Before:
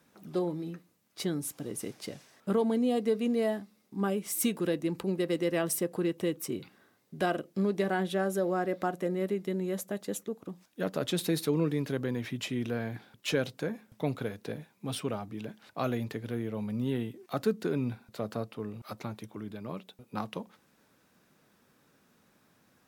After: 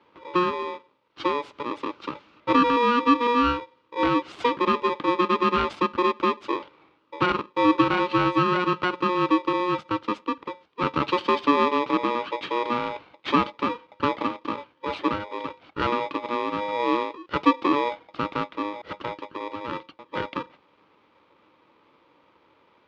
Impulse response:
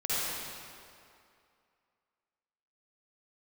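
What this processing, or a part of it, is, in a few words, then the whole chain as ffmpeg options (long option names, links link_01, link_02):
ring modulator pedal into a guitar cabinet: -af "aeval=exprs='val(0)*sgn(sin(2*PI*720*n/s))':channel_layout=same,highpass=81,equalizer=frequency=310:width_type=q:width=4:gain=10,equalizer=frequency=1200:width_type=q:width=4:gain=5,equalizer=frequency=1800:width_type=q:width=4:gain=-5,lowpass=frequency=3500:width=0.5412,lowpass=frequency=3500:width=1.3066,volume=5.5dB"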